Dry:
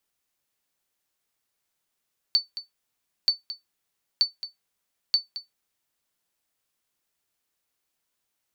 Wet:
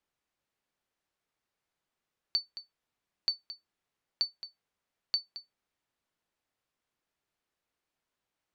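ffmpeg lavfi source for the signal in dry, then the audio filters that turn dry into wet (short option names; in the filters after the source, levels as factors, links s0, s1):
-f lavfi -i "aevalsrc='0.266*(sin(2*PI*4510*mod(t,0.93))*exp(-6.91*mod(t,0.93)/0.15)+0.2*sin(2*PI*4510*max(mod(t,0.93)-0.22,0))*exp(-6.91*max(mod(t,0.93)-0.22,0)/0.15))':d=3.72:s=44100"
-af "aemphasis=mode=reproduction:type=75kf"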